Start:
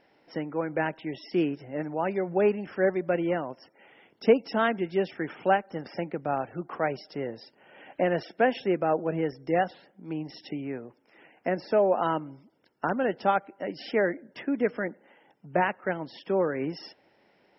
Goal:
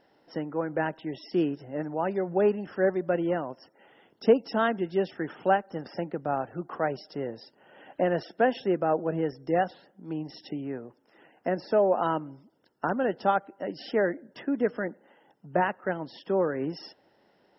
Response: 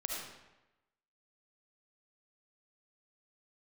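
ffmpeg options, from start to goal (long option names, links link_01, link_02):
-af "equalizer=frequency=2300:width=4.6:gain=-12"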